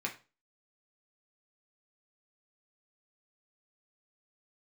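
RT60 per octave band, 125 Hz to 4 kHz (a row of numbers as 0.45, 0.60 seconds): 0.35, 0.35, 0.30, 0.30, 0.30, 0.30 seconds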